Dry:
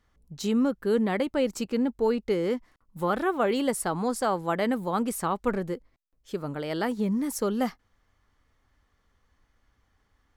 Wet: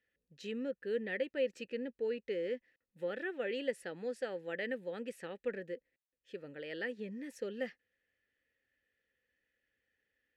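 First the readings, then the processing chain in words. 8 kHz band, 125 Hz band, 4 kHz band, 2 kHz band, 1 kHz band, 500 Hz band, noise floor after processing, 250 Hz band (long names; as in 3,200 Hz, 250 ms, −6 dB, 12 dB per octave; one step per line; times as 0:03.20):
−23.5 dB, −19.5 dB, −10.5 dB, −6.0 dB, −23.5 dB, −9.5 dB, below −85 dBFS, −17.0 dB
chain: formant filter e
parametric band 620 Hz −14.5 dB 1.1 octaves
level +6.5 dB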